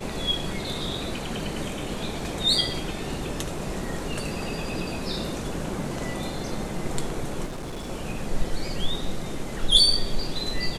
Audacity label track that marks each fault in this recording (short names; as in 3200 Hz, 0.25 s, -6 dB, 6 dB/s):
7.450000	7.900000	clipped -30.5 dBFS